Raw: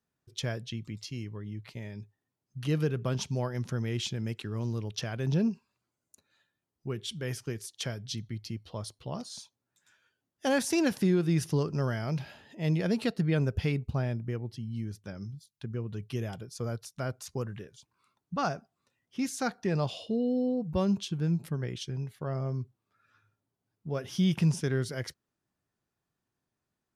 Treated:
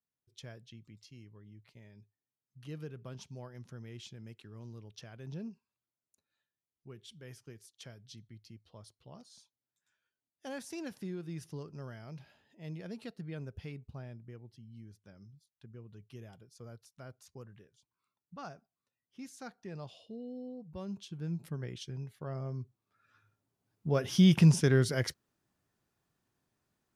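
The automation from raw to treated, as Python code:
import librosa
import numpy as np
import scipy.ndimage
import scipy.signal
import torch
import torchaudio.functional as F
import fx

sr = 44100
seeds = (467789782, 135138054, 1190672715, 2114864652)

y = fx.gain(x, sr, db=fx.line((20.78, -15.0), (21.5, -6.0), (22.52, -6.0), (23.89, 4.0)))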